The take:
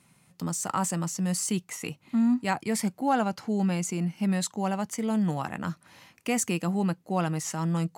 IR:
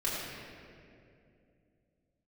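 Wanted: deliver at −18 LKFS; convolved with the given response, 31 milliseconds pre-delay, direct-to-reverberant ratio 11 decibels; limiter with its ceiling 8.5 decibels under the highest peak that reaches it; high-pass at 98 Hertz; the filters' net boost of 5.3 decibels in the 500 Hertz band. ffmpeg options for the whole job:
-filter_complex "[0:a]highpass=98,equalizer=frequency=500:width_type=o:gain=6.5,alimiter=limit=-18.5dB:level=0:latency=1,asplit=2[link_01][link_02];[1:a]atrim=start_sample=2205,adelay=31[link_03];[link_02][link_03]afir=irnorm=-1:irlink=0,volume=-18.5dB[link_04];[link_01][link_04]amix=inputs=2:normalize=0,volume=11dB"

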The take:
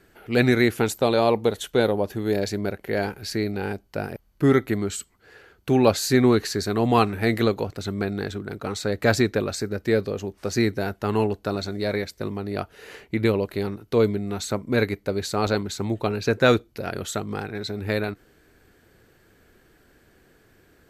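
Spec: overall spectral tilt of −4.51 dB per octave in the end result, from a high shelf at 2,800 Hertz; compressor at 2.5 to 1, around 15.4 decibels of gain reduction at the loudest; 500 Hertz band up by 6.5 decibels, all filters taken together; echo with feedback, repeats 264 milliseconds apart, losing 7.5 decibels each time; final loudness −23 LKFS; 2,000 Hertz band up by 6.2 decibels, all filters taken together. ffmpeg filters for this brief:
ffmpeg -i in.wav -af "equalizer=frequency=500:width_type=o:gain=7.5,equalizer=frequency=2000:width_type=o:gain=5.5,highshelf=frequency=2800:gain=5,acompressor=threshold=-31dB:ratio=2.5,aecho=1:1:264|528|792|1056|1320:0.422|0.177|0.0744|0.0312|0.0131,volume=7dB" out.wav

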